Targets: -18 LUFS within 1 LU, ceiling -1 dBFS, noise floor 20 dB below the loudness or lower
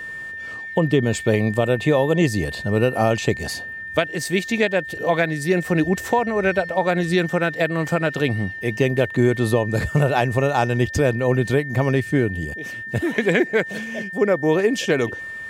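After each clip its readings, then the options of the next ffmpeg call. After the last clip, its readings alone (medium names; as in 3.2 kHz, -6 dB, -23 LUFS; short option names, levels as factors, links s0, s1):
steady tone 1.8 kHz; tone level -30 dBFS; loudness -21.0 LUFS; peak level -4.5 dBFS; loudness target -18.0 LUFS
-> -af "bandreject=f=1800:w=30"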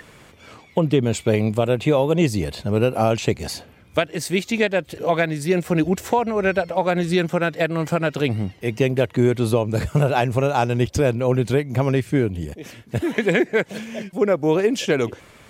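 steady tone not found; loudness -21.0 LUFS; peak level -4.5 dBFS; loudness target -18.0 LUFS
-> -af "volume=1.41"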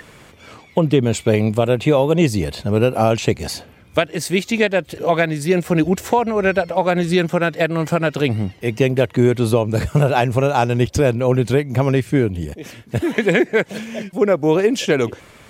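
loudness -18.0 LUFS; peak level -1.5 dBFS; noise floor -46 dBFS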